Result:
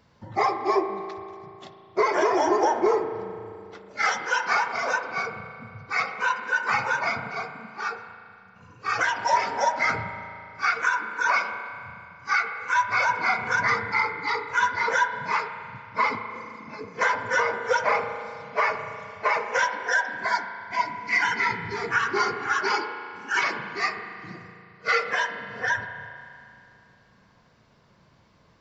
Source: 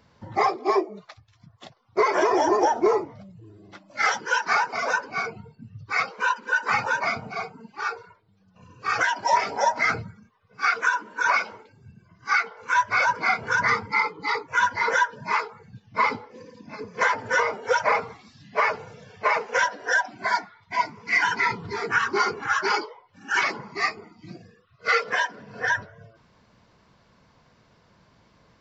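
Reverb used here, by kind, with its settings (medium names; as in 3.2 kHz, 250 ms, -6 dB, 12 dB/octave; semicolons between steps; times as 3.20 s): spring tank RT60 2.6 s, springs 36 ms, chirp 30 ms, DRR 7.5 dB; trim -1.5 dB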